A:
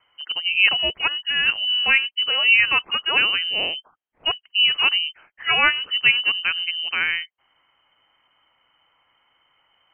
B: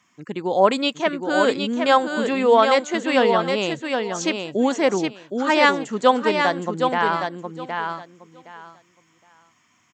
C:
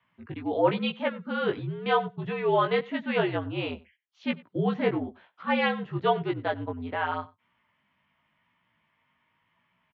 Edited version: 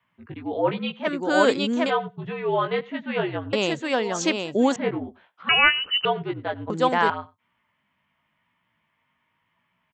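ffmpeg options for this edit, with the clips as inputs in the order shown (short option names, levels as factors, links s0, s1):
-filter_complex "[1:a]asplit=3[s0][s1][s2];[2:a]asplit=5[s3][s4][s5][s6][s7];[s3]atrim=end=1.09[s8];[s0]atrim=start=1.03:end=1.91[s9];[s4]atrim=start=1.85:end=3.532[s10];[s1]atrim=start=3.528:end=4.762[s11];[s5]atrim=start=4.758:end=5.492[s12];[0:a]atrim=start=5.488:end=6.052[s13];[s6]atrim=start=6.048:end=6.702[s14];[s2]atrim=start=6.698:end=7.102[s15];[s7]atrim=start=7.098[s16];[s8][s9]acrossfade=d=0.06:c1=tri:c2=tri[s17];[s17][s10]acrossfade=d=0.06:c1=tri:c2=tri[s18];[s18][s11]acrossfade=d=0.004:c1=hsin:c2=hsin[s19];[s19][s12]acrossfade=d=0.004:c1=hsin:c2=hsin[s20];[s20][s13]acrossfade=d=0.004:c1=hsin:c2=hsin[s21];[s21][s14]acrossfade=d=0.004:c1=hsin:c2=hsin[s22];[s22][s15]acrossfade=d=0.004:c1=hsin:c2=hsin[s23];[s23][s16]acrossfade=d=0.004:c1=hsin:c2=hsin"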